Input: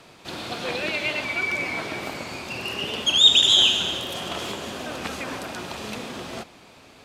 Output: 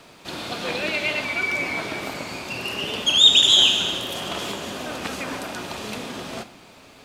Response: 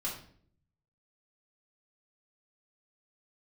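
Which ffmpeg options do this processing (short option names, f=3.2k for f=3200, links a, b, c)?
-filter_complex "[0:a]acrusher=bits=11:mix=0:aa=0.000001,asplit=2[a][b];[1:a]atrim=start_sample=2205,highshelf=f=6.4k:g=10[c];[b][c]afir=irnorm=-1:irlink=0,volume=-12.5dB[d];[a][d]amix=inputs=2:normalize=0"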